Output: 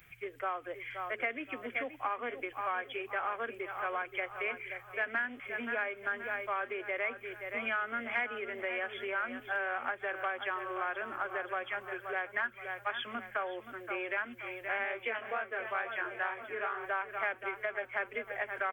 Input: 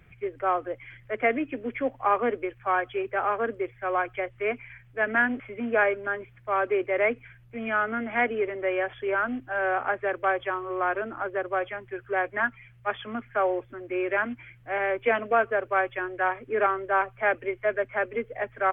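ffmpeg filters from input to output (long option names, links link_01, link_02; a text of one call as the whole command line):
ffmpeg -i in.wav -filter_complex "[0:a]aemphasis=mode=production:type=50kf,aecho=1:1:524|1048|1572|2096:0.251|0.0929|0.0344|0.0127,asplit=3[link_01][link_02][link_03];[link_01]afade=type=out:start_time=14.83:duration=0.02[link_04];[link_02]flanger=delay=18:depth=7.8:speed=2.2,afade=type=in:start_time=14.83:duration=0.02,afade=type=out:start_time=16.83:duration=0.02[link_05];[link_03]afade=type=in:start_time=16.83:duration=0.02[link_06];[link_04][link_05][link_06]amix=inputs=3:normalize=0,acompressor=threshold=-28dB:ratio=10,tiltshelf=frequency=770:gain=-6.5,bandreject=frequency=214.2:width_type=h:width=4,bandreject=frequency=428.4:width_type=h:width=4,volume=-4.5dB" out.wav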